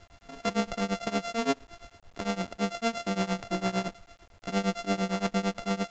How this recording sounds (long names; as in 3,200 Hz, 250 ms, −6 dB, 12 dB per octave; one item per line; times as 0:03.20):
a buzz of ramps at a fixed pitch in blocks of 64 samples
tremolo triangle 8.8 Hz, depth 95%
a quantiser's noise floor 10 bits, dither none
mu-law